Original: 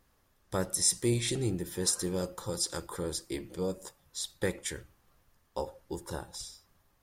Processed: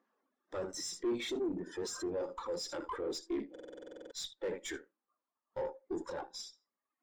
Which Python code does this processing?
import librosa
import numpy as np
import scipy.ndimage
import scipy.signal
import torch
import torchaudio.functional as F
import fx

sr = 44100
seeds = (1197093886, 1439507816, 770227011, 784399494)

p1 = fx.high_shelf(x, sr, hz=4400.0, db=-9.5)
p2 = fx.room_early_taps(p1, sr, ms=(23, 58, 79), db=(-15.5, -13.0, -9.0))
p3 = fx.dereverb_blind(p2, sr, rt60_s=1.3)
p4 = fx.over_compress(p3, sr, threshold_db=-40.0, ratio=-0.5)
p5 = p3 + F.gain(torch.from_numpy(p4), 0.0).numpy()
p6 = scipy.signal.sosfilt(scipy.signal.ellip(3, 1.0, 40, [240.0, 7200.0], 'bandpass', fs=sr, output='sos'), p5)
p7 = fx.tube_stage(p6, sr, drive_db=37.0, bias=0.45)
p8 = fx.buffer_glitch(p7, sr, at_s=(3.51,), block=2048, repeats=12)
p9 = fx.spectral_expand(p8, sr, expansion=1.5)
y = F.gain(torch.from_numpy(p9), 5.5).numpy()